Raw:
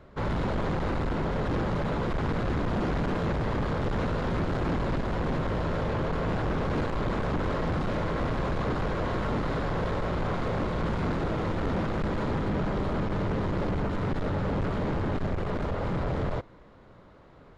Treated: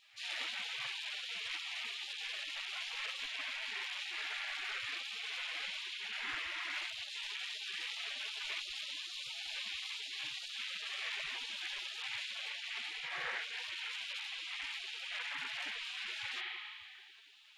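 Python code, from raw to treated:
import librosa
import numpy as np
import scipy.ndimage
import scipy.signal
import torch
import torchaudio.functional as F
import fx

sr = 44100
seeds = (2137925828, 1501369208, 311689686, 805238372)

y = fx.rev_spring(x, sr, rt60_s=2.1, pass_ms=(30,), chirp_ms=70, drr_db=-4.5)
y = fx.rider(y, sr, range_db=10, speed_s=0.5)
y = fx.spec_gate(y, sr, threshold_db=-30, keep='weak')
y = y * 10.0 ** (4.5 / 20.0)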